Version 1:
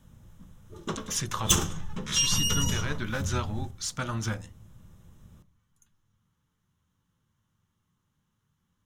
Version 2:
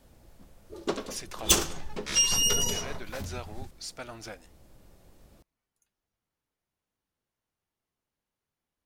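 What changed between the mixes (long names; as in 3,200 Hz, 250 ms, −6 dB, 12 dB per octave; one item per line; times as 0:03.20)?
speech −10.0 dB
reverb: off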